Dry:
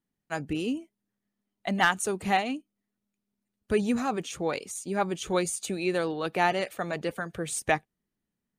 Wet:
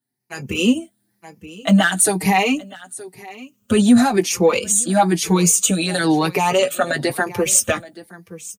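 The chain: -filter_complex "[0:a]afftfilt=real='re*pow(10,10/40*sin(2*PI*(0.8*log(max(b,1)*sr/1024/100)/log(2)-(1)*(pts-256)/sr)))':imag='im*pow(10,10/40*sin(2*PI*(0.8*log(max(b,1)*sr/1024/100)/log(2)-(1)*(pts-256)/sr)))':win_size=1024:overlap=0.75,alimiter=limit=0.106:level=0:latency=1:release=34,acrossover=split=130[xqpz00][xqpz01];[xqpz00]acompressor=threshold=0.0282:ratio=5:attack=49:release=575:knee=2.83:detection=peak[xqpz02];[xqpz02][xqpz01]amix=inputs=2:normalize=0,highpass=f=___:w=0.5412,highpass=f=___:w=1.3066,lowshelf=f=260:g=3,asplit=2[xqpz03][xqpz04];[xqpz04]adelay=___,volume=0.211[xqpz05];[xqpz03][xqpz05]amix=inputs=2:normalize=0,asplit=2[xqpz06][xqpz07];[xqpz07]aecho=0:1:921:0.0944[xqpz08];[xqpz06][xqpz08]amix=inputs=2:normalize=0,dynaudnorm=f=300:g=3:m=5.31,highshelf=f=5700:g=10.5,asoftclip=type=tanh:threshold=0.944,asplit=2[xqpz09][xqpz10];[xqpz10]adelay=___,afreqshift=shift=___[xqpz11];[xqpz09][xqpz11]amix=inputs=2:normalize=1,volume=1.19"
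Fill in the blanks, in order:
80, 80, 16, 5.1, -0.29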